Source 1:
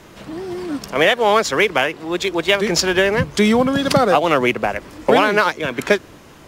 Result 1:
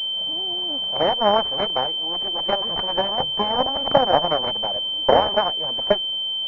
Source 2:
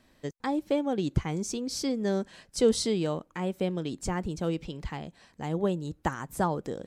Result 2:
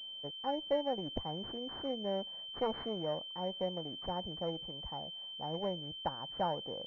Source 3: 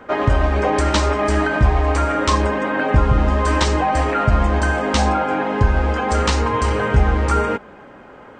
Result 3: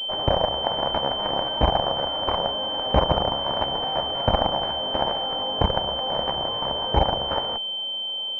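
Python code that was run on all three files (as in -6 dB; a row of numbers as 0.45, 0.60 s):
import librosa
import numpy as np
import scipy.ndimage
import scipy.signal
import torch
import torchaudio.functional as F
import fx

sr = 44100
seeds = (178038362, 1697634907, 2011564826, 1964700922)

y = fx.cheby_harmonics(x, sr, harmonics=(3, 6, 7), levels_db=(-16, -24, -17), full_scale_db=-1.0)
y = fx.band_shelf(y, sr, hz=700.0, db=10.5, octaves=1.1)
y = fx.pwm(y, sr, carrier_hz=3100.0)
y = y * librosa.db_to_amplitude(-5.5)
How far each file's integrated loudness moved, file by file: -3.5, -7.5, -5.5 LU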